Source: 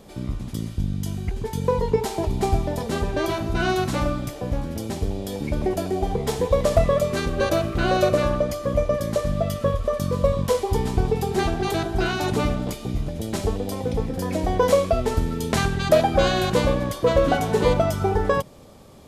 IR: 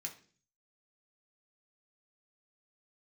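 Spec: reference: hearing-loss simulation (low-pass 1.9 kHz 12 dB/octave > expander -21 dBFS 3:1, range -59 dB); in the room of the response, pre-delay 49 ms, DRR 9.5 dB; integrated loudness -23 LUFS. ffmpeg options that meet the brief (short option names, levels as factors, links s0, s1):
-filter_complex "[0:a]asplit=2[s0][s1];[1:a]atrim=start_sample=2205,adelay=49[s2];[s1][s2]afir=irnorm=-1:irlink=0,volume=0.447[s3];[s0][s3]amix=inputs=2:normalize=0,lowpass=1900,agate=range=0.00112:threshold=0.0891:ratio=3,volume=1.06"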